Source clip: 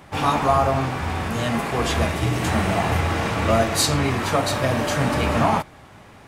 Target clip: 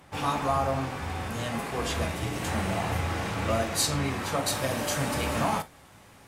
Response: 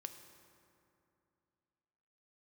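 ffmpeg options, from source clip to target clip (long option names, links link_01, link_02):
-filter_complex "[0:a]asetnsamples=nb_out_samples=441:pad=0,asendcmd='4.46 equalizer g 12',equalizer=frequency=14000:width_type=o:width=1.9:gain=4.5[link_01];[1:a]atrim=start_sample=2205,afade=type=out:start_time=0.13:duration=0.01,atrim=end_sample=6174,asetrate=66150,aresample=44100[link_02];[link_01][link_02]afir=irnorm=-1:irlink=0"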